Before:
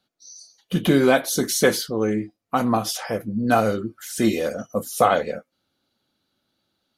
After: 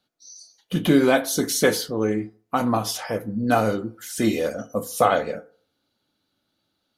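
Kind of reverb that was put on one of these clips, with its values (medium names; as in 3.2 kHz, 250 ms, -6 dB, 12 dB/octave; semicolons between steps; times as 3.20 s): FDN reverb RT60 0.47 s, low-frequency decay 0.8×, high-frequency decay 0.4×, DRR 11 dB; trim -1 dB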